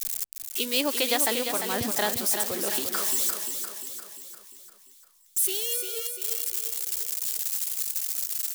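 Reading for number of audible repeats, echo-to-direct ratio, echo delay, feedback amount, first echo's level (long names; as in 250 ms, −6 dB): 6, −5.5 dB, 348 ms, 53%, −7.0 dB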